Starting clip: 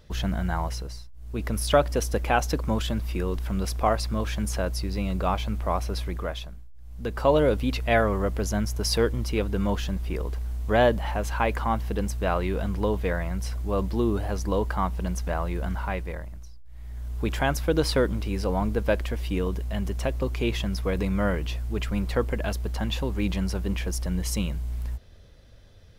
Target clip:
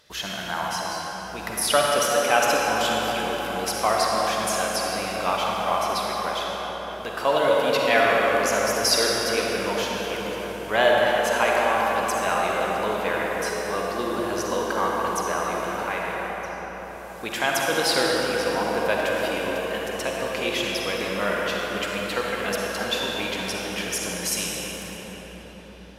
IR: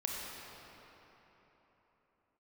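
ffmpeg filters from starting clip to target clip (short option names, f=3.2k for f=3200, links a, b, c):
-filter_complex "[0:a]highpass=f=1.4k:p=1[a];[1:a]atrim=start_sample=2205,asetrate=26901,aresample=44100[b];[a][b]afir=irnorm=-1:irlink=0,volume=5dB"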